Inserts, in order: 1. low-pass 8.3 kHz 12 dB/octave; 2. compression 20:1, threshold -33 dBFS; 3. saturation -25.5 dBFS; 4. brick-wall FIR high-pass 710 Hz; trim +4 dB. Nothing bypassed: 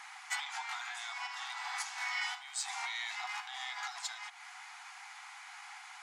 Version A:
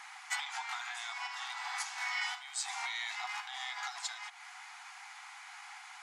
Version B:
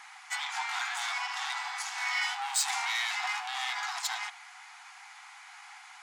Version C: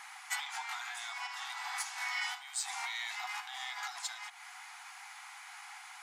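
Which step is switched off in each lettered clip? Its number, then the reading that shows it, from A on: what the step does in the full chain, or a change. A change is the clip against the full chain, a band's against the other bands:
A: 3, crest factor change +2.5 dB; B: 2, mean gain reduction 6.5 dB; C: 1, 8 kHz band +2.0 dB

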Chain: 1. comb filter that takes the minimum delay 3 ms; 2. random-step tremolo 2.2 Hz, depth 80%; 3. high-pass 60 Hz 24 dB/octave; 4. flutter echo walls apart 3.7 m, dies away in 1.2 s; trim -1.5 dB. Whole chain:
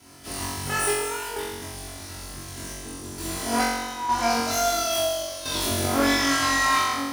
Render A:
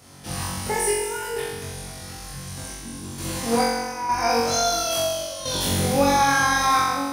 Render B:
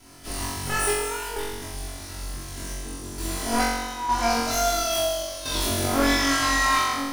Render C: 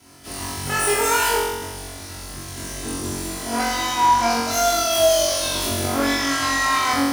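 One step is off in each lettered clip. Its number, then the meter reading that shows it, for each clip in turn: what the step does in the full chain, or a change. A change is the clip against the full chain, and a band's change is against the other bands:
1, 125 Hz band +4.0 dB; 3, 125 Hz band +1.5 dB; 2, loudness change +4.0 LU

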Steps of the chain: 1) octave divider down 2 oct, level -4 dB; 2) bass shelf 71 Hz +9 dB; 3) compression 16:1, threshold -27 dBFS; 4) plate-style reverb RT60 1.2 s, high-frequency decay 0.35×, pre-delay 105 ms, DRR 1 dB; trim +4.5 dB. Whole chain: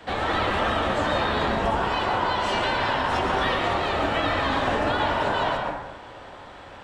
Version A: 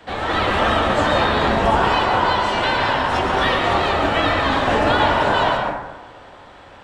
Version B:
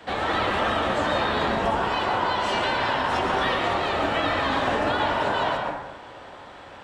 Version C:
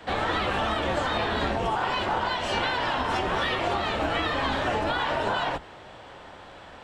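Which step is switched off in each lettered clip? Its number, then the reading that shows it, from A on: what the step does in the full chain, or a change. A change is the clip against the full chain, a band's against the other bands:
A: 3, mean gain reduction 4.5 dB; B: 2, 125 Hz band -3.0 dB; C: 4, momentary loudness spread change +4 LU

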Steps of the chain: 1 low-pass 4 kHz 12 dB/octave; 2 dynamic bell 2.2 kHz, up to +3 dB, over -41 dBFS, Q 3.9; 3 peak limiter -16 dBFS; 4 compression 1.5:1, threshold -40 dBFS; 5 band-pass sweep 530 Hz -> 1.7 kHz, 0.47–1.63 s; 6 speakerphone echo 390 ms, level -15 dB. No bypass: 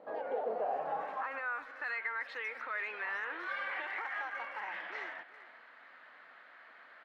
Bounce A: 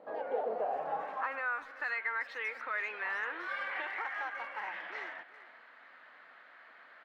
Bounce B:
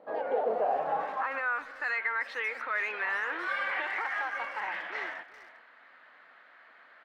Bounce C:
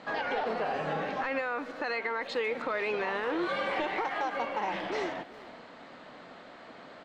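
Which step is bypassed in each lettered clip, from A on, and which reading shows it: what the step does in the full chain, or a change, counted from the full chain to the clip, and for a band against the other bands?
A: 3, crest factor change +2.0 dB; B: 4, mean gain reduction 4.5 dB; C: 5, 250 Hz band +11.5 dB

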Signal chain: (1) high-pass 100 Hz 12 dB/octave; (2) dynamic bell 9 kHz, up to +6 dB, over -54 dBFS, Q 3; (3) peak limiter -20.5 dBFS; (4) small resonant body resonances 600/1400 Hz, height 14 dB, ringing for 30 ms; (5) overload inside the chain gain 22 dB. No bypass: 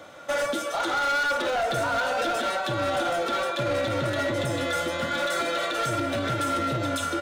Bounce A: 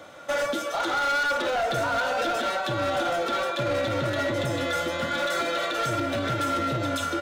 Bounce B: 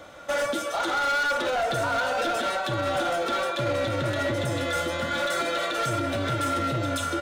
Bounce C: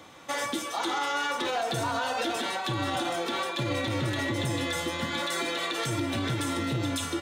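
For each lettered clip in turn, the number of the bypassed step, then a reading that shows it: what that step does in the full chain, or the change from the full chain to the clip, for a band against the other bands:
2, 8 kHz band -1.5 dB; 1, 125 Hz band +2.0 dB; 4, 500 Hz band -6.5 dB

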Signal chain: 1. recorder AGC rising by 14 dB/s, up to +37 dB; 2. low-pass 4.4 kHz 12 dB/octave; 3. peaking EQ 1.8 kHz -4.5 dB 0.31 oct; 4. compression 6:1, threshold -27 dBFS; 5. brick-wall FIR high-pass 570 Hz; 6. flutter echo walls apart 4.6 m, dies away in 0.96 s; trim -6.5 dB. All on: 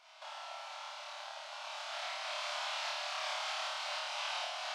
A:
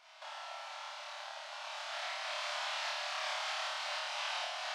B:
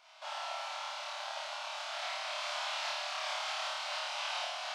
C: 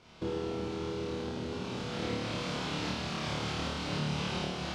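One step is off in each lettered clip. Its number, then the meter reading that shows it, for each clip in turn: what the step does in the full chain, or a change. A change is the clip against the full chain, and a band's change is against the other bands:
3, 2 kHz band +1.5 dB; 4, mean gain reduction 2.5 dB; 5, 500 Hz band +10.0 dB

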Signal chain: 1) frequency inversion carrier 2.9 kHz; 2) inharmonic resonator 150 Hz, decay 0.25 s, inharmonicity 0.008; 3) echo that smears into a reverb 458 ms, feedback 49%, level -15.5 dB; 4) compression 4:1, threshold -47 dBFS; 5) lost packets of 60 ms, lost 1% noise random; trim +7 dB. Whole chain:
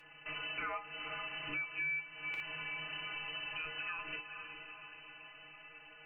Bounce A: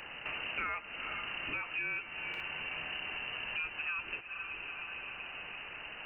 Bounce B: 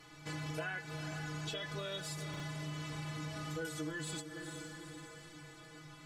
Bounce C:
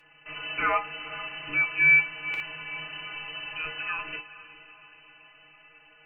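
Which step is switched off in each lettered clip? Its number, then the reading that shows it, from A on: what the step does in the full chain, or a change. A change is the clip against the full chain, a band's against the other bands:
2, crest factor change +1.5 dB; 1, 2 kHz band -16.5 dB; 4, mean gain reduction 6.0 dB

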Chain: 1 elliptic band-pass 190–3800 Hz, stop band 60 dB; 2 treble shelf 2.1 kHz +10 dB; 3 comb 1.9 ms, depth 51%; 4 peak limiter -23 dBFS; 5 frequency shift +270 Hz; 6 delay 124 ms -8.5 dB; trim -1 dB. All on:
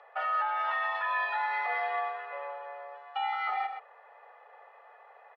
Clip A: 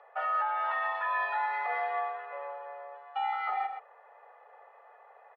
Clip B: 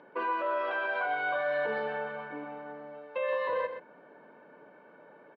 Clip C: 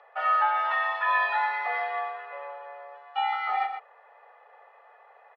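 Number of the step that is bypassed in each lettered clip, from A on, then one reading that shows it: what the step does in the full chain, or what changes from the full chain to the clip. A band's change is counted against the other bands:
2, 4 kHz band -5.5 dB; 5, 500 Hz band +13.0 dB; 4, mean gain reduction 1.5 dB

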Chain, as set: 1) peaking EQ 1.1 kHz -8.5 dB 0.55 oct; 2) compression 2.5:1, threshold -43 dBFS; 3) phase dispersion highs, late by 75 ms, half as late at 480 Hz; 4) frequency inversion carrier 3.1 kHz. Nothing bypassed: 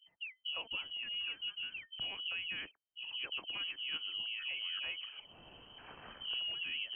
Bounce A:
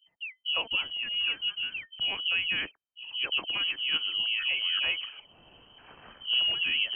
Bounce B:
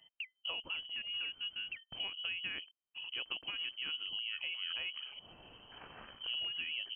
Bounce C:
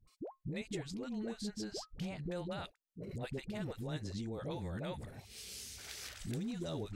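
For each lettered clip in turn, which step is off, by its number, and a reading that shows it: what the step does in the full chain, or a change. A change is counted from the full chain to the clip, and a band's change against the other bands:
2, mean gain reduction 8.0 dB; 3, crest factor change +2.0 dB; 4, 2 kHz band -30.0 dB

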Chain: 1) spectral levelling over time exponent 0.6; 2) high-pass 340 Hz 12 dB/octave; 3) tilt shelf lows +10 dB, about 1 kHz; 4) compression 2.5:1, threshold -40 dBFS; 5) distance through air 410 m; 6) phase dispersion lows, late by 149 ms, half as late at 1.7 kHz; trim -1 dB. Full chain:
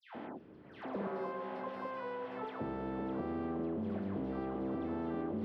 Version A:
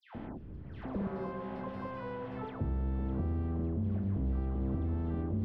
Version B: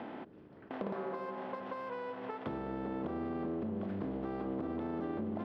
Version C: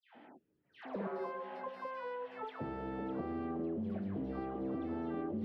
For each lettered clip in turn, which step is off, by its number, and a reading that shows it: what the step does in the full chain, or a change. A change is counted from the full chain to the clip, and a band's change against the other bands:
2, 125 Hz band +15.5 dB; 6, crest factor change +2.5 dB; 1, momentary loudness spread change -4 LU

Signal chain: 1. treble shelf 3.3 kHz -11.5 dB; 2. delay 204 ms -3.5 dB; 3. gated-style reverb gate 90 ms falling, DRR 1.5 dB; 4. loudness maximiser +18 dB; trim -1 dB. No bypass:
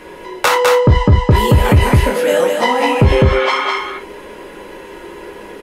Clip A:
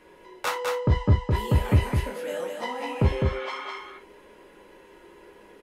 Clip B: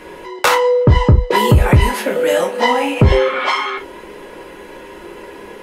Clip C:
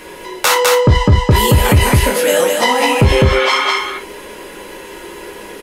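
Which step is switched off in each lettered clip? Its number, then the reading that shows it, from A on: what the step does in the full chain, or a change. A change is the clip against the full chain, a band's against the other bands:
4, crest factor change +7.5 dB; 2, momentary loudness spread change -5 LU; 1, 8 kHz band +8.5 dB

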